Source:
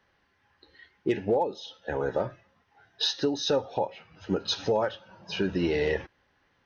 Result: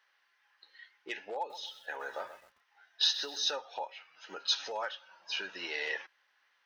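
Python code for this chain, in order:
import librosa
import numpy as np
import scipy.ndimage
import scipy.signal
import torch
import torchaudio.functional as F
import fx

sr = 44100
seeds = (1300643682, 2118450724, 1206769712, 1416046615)

y = scipy.signal.sosfilt(scipy.signal.butter(2, 1200.0, 'highpass', fs=sr, output='sos'), x)
y = fx.echo_crushed(y, sr, ms=129, feedback_pct=35, bits=9, wet_db=-12.0, at=(1.37, 3.51))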